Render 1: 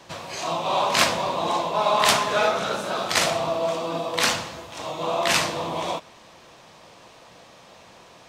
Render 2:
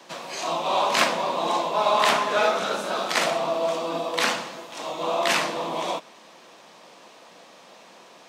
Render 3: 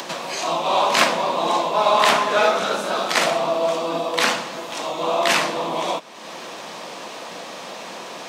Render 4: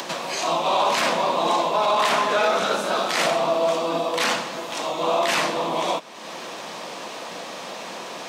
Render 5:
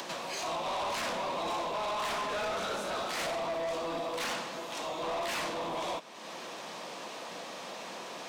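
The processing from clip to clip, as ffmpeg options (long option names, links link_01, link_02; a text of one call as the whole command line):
ffmpeg -i in.wav -filter_complex "[0:a]highpass=frequency=190:width=0.5412,highpass=frequency=190:width=1.3066,acrossover=split=380|3100[link_01][link_02][link_03];[link_03]alimiter=limit=-16.5dB:level=0:latency=1:release=415[link_04];[link_01][link_02][link_04]amix=inputs=3:normalize=0" out.wav
ffmpeg -i in.wav -af "acompressor=mode=upward:threshold=-27dB:ratio=2.5,volume=4dB" out.wav
ffmpeg -i in.wav -af "alimiter=limit=-11.5dB:level=0:latency=1:release=18" out.wav
ffmpeg -i in.wav -af "asoftclip=type=tanh:threshold=-23dB,volume=-7.5dB" out.wav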